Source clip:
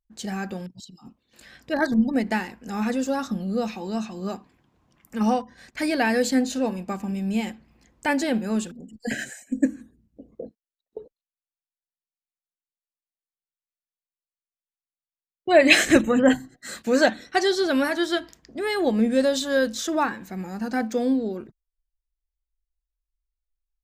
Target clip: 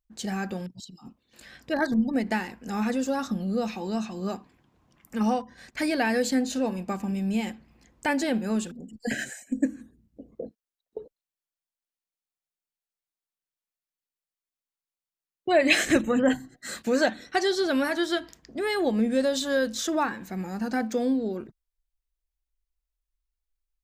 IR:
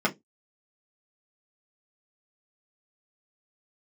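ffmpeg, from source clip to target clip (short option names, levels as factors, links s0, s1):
-af "acompressor=threshold=0.0501:ratio=1.5"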